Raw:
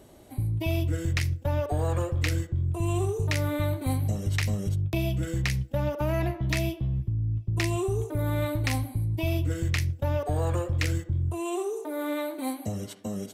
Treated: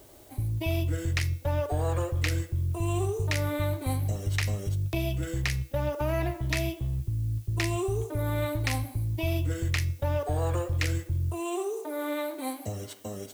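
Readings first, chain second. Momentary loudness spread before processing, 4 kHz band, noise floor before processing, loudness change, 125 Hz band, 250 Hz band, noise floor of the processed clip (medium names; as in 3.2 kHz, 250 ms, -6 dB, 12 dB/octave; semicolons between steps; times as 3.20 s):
4 LU, 0.0 dB, -46 dBFS, -1.5 dB, -1.5 dB, -3.0 dB, -47 dBFS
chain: peaking EQ 190 Hz -10.5 dB 0.72 oct; de-hum 240.5 Hz, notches 35; added noise blue -58 dBFS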